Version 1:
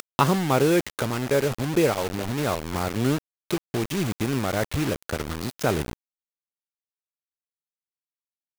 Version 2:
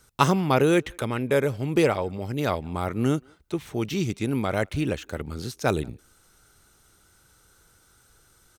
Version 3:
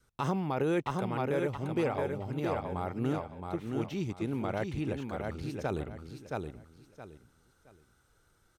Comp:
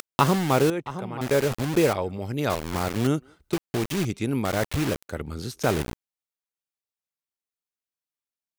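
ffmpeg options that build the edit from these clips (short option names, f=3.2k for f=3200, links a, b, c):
-filter_complex "[1:a]asplit=4[a][b][c][d];[0:a]asplit=6[e][f][g][h][i][j];[e]atrim=end=0.702[k];[2:a]atrim=start=0.698:end=1.212[l];[f]atrim=start=1.208:end=1.932[m];[a]atrim=start=1.928:end=2.502[n];[g]atrim=start=2.498:end=3.072[o];[b]atrim=start=3.068:end=3.532[p];[h]atrim=start=3.528:end=4.052[q];[c]atrim=start=4.048:end=4.452[r];[i]atrim=start=4.448:end=5.092[s];[d]atrim=start=5.088:end=5.632[t];[j]atrim=start=5.628[u];[k][l]acrossfade=d=0.004:c1=hsin:c2=hsin[v];[v][m]acrossfade=d=0.004:c1=hsin:c2=hsin[w];[w][n]acrossfade=d=0.004:c1=hsin:c2=hsin[x];[x][o]acrossfade=d=0.004:c1=hsin:c2=hsin[y];[y][p]acrossfade=d=0.004:c1=hsin:c2=hsin[z];[z][q]acrossfade=d=0.004:c1=hsin:c2=hsin[aa];[aa][r]acrossfade=d=0.004:c1=hsin:c2=hsin[ab];[ab][s]acrossfade=d=0.004:c1=hsin:c2=hsin[ac];[ac][t]acrossfade=d=0.004:c1=hsin:c2=hsin[ad];[ad][u]acrossfade=d=0.004:c1=hsin:c2=hsin"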